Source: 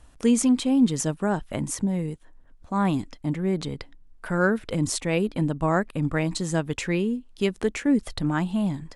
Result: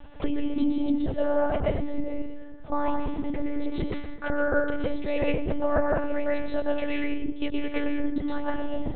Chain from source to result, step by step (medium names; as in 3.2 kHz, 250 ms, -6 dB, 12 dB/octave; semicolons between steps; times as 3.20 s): bass shelf 93 Hz +3.5 dB; plate-style reverb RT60 0.69 s, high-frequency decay 0.8×, pre-delay 105 ms, DRR -4 dB; compression 5:1, threshold -29 dBFS, peak gain reduction 18 dB; peaking EQ 610 Hz +9 dB 0.53 oct; monotone LPC vocoder at 8 kHz 290 Hz; trim +4.5 dB